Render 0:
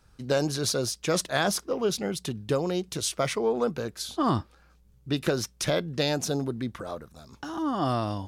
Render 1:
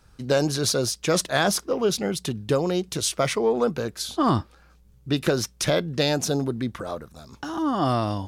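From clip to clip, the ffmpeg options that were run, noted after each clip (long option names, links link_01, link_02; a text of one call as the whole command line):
ffmpeg -i in.wav -af "acontrast=84,volume=-3dB" out.wav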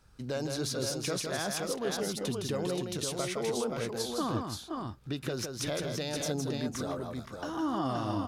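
ffmpeg -i in.wav -filter_complex "[0:a]alimiter=limit=-19dB:level=0:latency=1:release=226,asplit=2[link_01][link_02];[link_02]aecho=0:1:162|500|525:0.562|0.158|0.596[link_03];[link_01][link_03]amix=inputs=2:normalize=0,volume=-6dB" out.wav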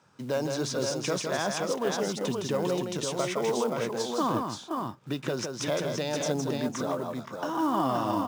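ffmpeg -i in.wav -af "highpass=frequency=130:width=0.5412,highpass=frequency=130:width=1.3066,equalizer=frequency=580:width_type=q:width=4:gain=3,equalizer=frequency=970:width_type=q:width=4:gain=7,equalizer=frequency=4300:width_type=q:width=4:gain=-6,lowpass=frequency=7700:width=0.5412,lowpass=frequency=7700:width=1.3066,acrusher=bits=6:mode=log:mix=0:aa=0.000001,volume=3.5dB" out.wav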